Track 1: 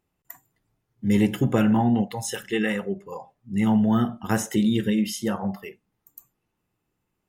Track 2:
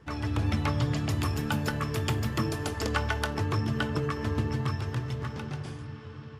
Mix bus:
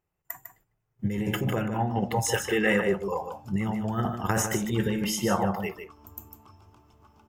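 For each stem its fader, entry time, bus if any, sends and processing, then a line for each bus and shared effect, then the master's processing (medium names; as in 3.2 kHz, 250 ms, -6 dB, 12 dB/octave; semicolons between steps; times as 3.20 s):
+3.0 dB, 0.00 s, no send, echo send -8 dB, compressor with a negative ratio -25 dBFS, ratio -1
-14.0 dB, 1.80 s, no send, no echo send, static phaser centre 490 Hz, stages 6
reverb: none
echo: delay 151 ms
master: gate -59 dBFS, range -10 dB; fifteen-band graphic EQ 250 Hz -10 dB, 4 kHz -10 dB, 10 kHz -7 dB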